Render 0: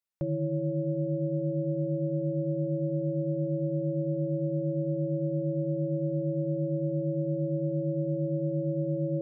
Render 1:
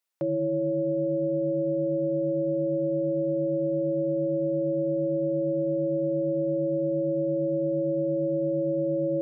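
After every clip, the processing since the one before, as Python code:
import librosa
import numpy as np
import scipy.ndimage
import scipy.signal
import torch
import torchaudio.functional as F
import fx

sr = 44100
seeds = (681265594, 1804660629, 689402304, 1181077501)

y = scipy.signal.sosfilt(scipy.signal.butter(2, 300.0, 'highpass', fs=sr, output='sos'), x)
y = y * 10.0 ** (7.0 / 20.0)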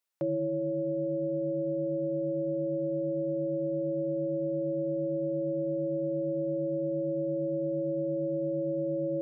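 y = fx.rider(x, sr, range_db=10, speed_s=0.5)
y = y * 10.0 ** (-4.5 / 20.0)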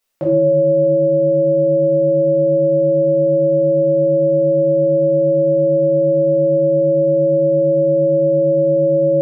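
y = x + 10.0 ** (-21.5 / 20.0) * np.pad(x, (int(634 * sr / 1000.0), 0))[:len(x)]
y = fx.room_shoebox(y, sr, seeds[0], volume_m3=150.0, walls='mixed', distance_m=1.6)
y = y * 10.0 ** (9.0 / 20.0)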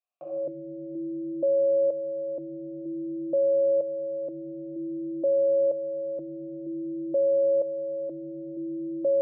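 y = fx.echo_feedback(x, sr, ms=67, feedback_pct=52, wet_db=-4.5)
y = fx.vowel_held(y, sr, hz=2.1)
y = y * 10.0 ** (-8.0 / 20.0)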